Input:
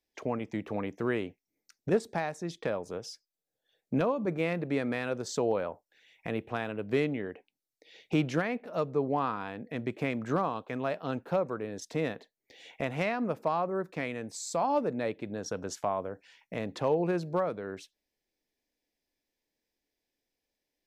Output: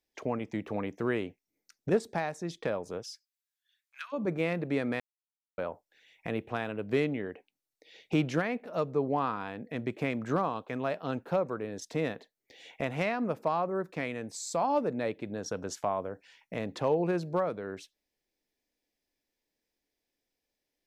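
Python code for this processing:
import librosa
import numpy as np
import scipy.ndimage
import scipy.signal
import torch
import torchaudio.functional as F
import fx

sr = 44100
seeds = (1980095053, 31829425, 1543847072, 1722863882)

y = fx.steep_highpass(x, sr, hz=1400.0, slope=36, at=(3.02, 4.12), fade=0.02)
y = fx.edit(y, sr, fx.silence(start_s=5.0, length_s=0.58), tone=tone)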